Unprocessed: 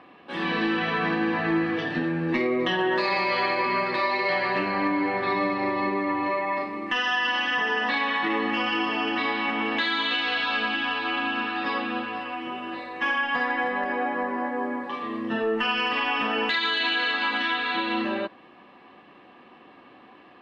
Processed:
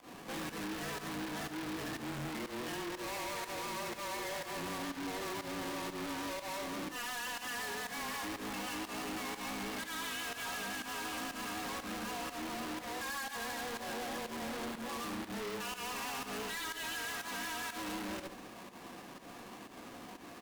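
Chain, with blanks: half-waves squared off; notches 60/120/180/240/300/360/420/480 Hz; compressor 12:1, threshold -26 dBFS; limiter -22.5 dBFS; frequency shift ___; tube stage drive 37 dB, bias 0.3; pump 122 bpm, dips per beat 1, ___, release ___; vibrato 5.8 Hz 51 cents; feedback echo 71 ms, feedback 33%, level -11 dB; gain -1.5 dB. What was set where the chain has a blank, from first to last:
-19 Hz, -20 dB, 0.11 s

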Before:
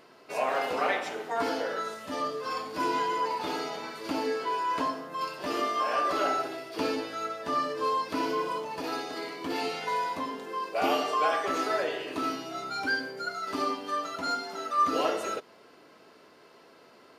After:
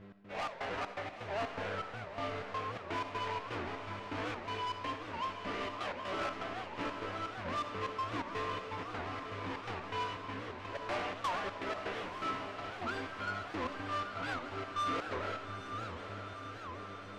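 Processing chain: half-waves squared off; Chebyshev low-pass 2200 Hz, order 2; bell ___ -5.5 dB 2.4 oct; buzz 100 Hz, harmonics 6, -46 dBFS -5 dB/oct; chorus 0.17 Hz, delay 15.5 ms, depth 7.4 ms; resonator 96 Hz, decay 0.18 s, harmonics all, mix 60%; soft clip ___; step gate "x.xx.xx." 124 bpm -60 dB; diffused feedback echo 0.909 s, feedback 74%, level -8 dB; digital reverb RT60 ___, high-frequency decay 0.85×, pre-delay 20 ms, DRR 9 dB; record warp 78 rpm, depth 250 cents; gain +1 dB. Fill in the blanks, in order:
380 Hz, -32 dBFS, 0.87 s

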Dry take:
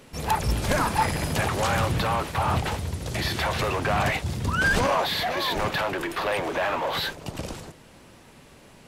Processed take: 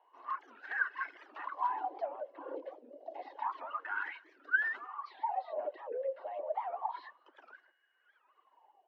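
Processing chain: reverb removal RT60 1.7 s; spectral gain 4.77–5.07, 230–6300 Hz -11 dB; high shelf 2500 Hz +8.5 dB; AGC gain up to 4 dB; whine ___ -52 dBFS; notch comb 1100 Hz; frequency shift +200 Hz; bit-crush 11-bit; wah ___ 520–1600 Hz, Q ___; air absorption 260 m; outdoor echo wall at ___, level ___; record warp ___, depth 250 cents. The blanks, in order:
2700 Hz, 0.29 Hz, 14, 35 m, -27 dB, 78 rpm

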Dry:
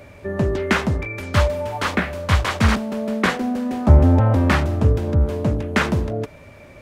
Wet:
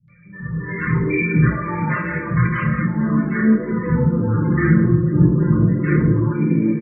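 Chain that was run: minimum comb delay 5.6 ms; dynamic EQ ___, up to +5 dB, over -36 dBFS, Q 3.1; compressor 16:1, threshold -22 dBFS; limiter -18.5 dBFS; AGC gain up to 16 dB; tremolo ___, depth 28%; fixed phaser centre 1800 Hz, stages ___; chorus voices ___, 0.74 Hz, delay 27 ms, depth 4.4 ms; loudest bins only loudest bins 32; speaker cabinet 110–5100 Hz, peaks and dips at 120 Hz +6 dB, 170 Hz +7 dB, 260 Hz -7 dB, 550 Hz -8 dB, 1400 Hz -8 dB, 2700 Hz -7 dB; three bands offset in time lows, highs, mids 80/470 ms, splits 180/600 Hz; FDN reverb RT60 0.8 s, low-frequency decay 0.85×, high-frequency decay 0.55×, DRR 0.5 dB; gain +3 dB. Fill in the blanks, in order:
270 Hz, 1.3 Hz, 4, 6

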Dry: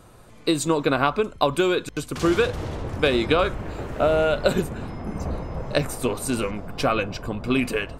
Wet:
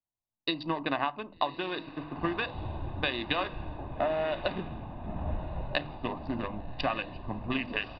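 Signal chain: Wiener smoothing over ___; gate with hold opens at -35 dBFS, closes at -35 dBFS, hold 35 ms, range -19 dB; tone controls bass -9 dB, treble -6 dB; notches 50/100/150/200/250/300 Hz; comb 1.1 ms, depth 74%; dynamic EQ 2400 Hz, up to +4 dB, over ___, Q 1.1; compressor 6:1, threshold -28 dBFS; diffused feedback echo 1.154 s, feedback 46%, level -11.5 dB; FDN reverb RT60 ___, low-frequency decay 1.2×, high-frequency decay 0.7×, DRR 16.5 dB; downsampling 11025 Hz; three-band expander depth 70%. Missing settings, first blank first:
25 samples, -42 dBFS, 0.39 s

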